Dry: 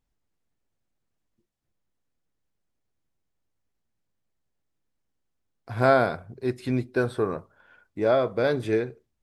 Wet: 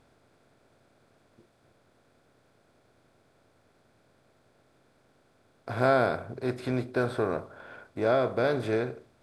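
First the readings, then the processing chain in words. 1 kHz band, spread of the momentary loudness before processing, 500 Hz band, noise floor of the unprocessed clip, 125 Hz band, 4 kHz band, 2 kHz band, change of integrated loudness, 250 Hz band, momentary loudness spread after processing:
-2.5 dB, 15 LU, -3.0 dB, -79 dBFS, -3.0 dB, -2.0 dB, -2.5 dB, -3.5 dB, -3.0 dB, 16 LU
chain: spectral levelling over time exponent 0.6; trim -5.5 dB

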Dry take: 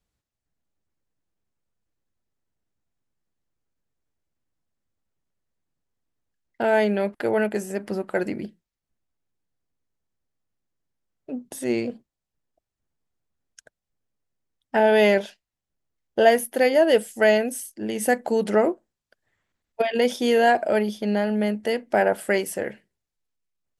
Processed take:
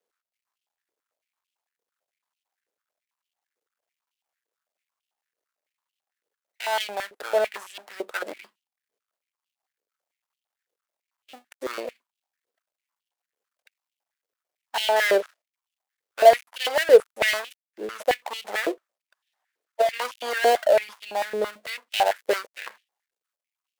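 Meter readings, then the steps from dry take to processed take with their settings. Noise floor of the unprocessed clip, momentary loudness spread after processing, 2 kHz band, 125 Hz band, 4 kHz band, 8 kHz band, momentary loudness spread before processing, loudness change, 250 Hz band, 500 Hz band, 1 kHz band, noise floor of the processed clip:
under -85 dBFS, 21 LU, -1.0 dB, under -20 dB, +3.5 dB, -2.0 dB, 13 LU, -1.0 dB, -16.0 dB, -2.0 dB, +0.5 dB, under -85 dBFS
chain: dead-time distortion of 0.2 ms; companded quantiser 8-bit; step-sequenced high-pass 9 Hz 460–2900 Hz; trim -4.5 dB

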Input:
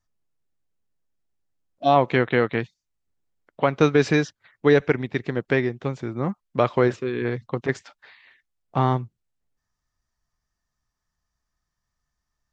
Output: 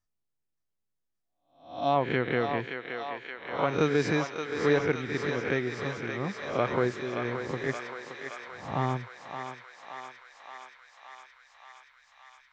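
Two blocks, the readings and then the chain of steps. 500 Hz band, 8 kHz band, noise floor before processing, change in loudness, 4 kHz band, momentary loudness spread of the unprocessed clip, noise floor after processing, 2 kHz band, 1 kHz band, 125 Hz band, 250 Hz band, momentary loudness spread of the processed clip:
-6.5 dB, no reading, -81 dBFS, -7.5 dB, -3.5 dB, 11 LU, -81 dBFS, -4.0 dB, -5.5 dB, -7.5 dB, -7.0 dB, 20 LU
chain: reverse spectral sustain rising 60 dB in 0.50 s; thinning echo 573 ms, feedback 81%, high-pass 660 Hz, level -5 dB; trim -8.5 dB

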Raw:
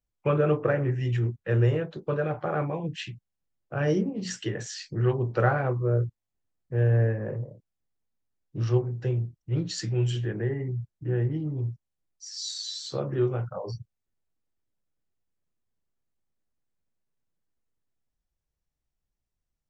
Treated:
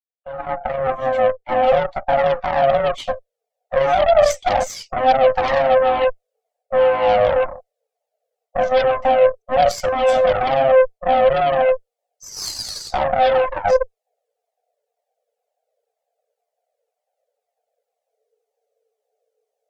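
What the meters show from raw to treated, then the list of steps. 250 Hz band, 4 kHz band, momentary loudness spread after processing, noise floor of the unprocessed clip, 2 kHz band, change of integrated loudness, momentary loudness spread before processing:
-3.0 dB, +9.0 dB, 11 LU, -84 dBFS, +11.5 dB, +10.5 dB, 12 LU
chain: fade-in on the opening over 4.08 s; high-pass 42 Hz 12 dB/octave; resonant low shelf 440 Hz +10 dB, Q 3; reverse; compression 16:1, threshold -20 dBFS, peak gain reduction 15 dB; reverse; frequency shift +400 Hz; Chebyshev shaper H 4 -21 dB, 5 -14 dB, 7 -14 dB, 8 -26 dB, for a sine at -12.5 dBFS; loudness maximiser +15.5 dB; Shepard-style flanger falling 2 Hz; trim -2 dB

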